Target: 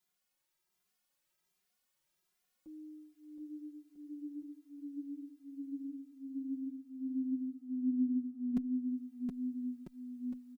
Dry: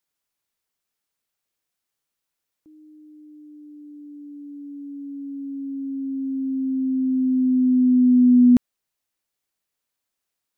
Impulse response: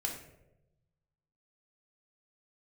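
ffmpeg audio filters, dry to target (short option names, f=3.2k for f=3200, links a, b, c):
-filter_complex "[0:a]aecho=1:1:5.5:0.72,acompressor=threshold=-43dB:ratio=2,aecho=1:1:720|1296|1757|2125|2420:0.631|0.398|0.251|0.158|0.1,asplit=2[a][b];[b]adelay=2.5,afreqshift=1.3[c];[a][c]amix=inputs=2:normalize=1"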